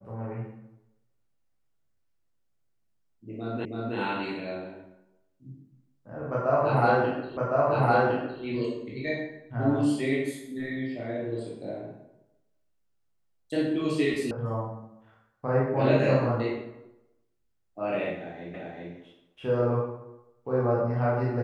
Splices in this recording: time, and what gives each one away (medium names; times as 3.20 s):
3.65 s: repeat of the last 0.32 s
7.37 s: repeat of the last 1.06 s
14.31 s: sound stops dead
18.54 s: repeat of the last 0.39 s